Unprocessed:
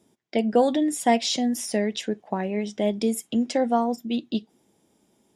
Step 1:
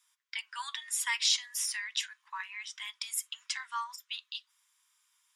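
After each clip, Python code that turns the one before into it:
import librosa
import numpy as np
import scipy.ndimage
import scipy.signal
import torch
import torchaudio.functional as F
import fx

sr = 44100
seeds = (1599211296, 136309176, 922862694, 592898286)

y = scipy.signal.sosfilt(scipy.signal.butter(16, 1000.0, 'highpass', fs=sr, output='sos'), x)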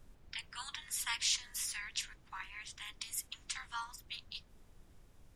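y = fx.spec_clip(x, sr, under_db=15)
y = fx.dmg_noise_colour(y, sr, seeds[0], colour='brown', level_db=-53.0)
y = y * librosa.db_to_amplitude(-5.5)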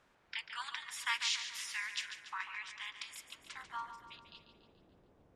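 y = fx.filter_sweep_bandpass(x, sr, from_hz=1500.0, to_hz=450.0, start_s=2.96, end_s=3.67, q=0.75)
y = fx.echo_feedback(y, sr, ms=143, feedback_pct=53, wet_db=-10.0)
y = y * librosa.db_to_amplitude(5.0)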